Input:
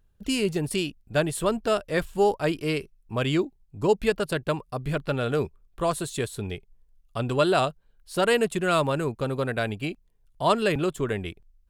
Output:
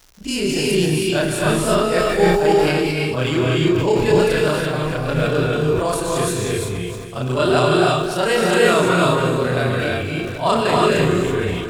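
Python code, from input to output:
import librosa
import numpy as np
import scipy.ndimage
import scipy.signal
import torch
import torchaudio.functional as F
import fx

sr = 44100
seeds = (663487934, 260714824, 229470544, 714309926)

p1 = fx.frame_reverse(x, sr, frame_ms=79.0)
p2 = p1 + fx.echo_feedback(p1, sr, ms=266, feedback_pct=54, wet_db=-13, dry=0)
p3 = fx.rev_gated(p2, sr, seeds[0], gate_ms=360, shape='rising', drr_db=-3.0)
p4 = fx.dmg_crackle(p3, sr, seeds[1], per_s=240.0, level_db=-43.0)
p5 = fx.peak_eq(p4, sr, hz=5700.0, db=6.0, octaves=0.49)
p6 = fx.sustainer(p5, sr, db_per_s=36.0)
y = F.gain(torch.from_numpy(p6), 6.0).numpy()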